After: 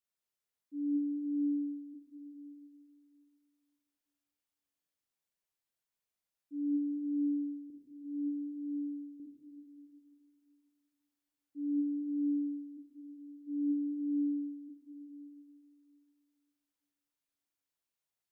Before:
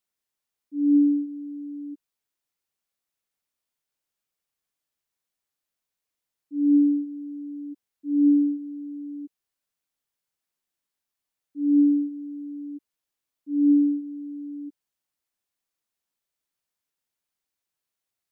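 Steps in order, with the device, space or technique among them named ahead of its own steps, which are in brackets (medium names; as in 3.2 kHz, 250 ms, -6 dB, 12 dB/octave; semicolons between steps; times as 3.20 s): 7.70–9.20 s: peaking EQ 390 Hz -5.5 dB 2.6 oct; stairwell (reverberation RT60 2.1 s, pre-delay 30 ms, DRR 0 dB); trim -8.5 dB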